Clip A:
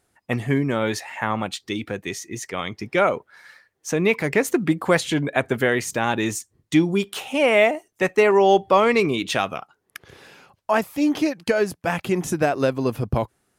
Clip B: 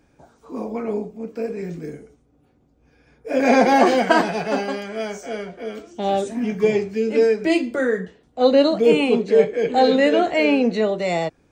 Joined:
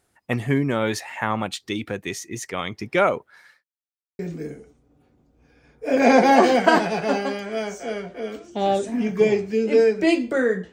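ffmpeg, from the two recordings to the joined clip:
-filter_complex "[0:a]apad=whole_dur=10.72,atrim=end=10.72,asplit=2[a][b];[a]atrim=end=3.64,asetpts=PTS-STARTPTS,afade=t=out:st=3.19:d=0.45:c=qsin[c];[b]atrim=start=3.64:end=4.19,asetpts=PTS-STARTPTS,volume=0[d];[1:a]atrim=start=1.62:end=8.15,asetpts=PTS-STARTPTS,afade=t=in:d=0.004:c=hsin[e];[c][d][e]concat=n=3:v=0:a=1"

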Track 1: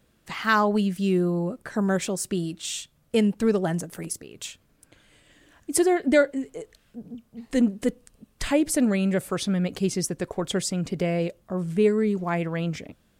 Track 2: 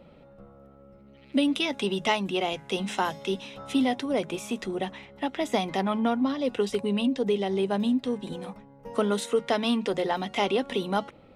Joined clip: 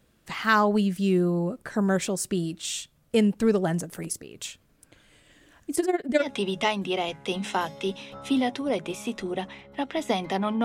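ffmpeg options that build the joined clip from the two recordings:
-filter_complex "[0:a]asplit=3[a][b][c];[a]afade=t=out:st=5.74:d=0.02[d];[b]tremolo=f=19:d=0.86,afade=t=in:st=5.74:d=0.02,afade=t=out:st=6.29:d=0.02[e];[c]afade=t=in:st=6.29:d=0.02[f];[d][e][f]amix=inputs=3:normalize=0,apad=whole_dur=10.64,atrim=end=10.64,atrim=end=6.29,asetpts=PTS-STARTPTS[g];[1:a]atrim=start=1.61:end=6.08,asetpts=PTS-STARTPTS[h];[g][h]acrossfade=d=0.12:c1=tri:c2=tri"

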